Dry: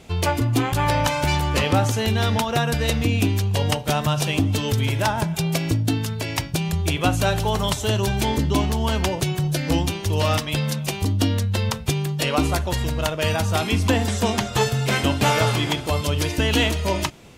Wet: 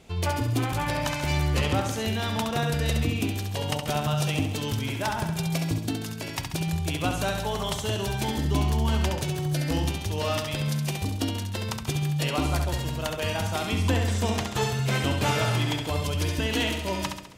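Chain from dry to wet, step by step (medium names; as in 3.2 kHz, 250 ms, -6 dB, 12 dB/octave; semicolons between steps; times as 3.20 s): on a send: flutter echo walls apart 11.6 m, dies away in 0.74 s; 12.65–14.03 s: on the sum: added noise brown -56 dBFS; trim -7 dB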